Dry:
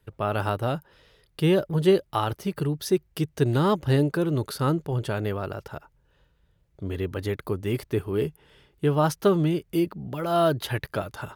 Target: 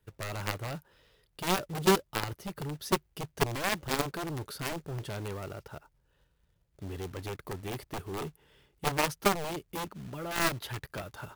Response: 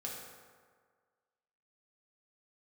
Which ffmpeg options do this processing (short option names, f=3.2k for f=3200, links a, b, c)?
-af "acrusher=bits=3:mode=log:mix=0:aa=0.000001,aeval=exprs='0.473*(cos(1*acos(clip(val(0)/0.473,-1,1)))-cos(1*PI/2))+0.0944*(cos(3*acos(clip(val(0)/0.473,-1,1)))-cos(3*PI/2))+0.0668*(cos(7*acos(clip(val(0)/0.473,-1,1)))-cos(7*PI/2))':c=same,volume=-2dB"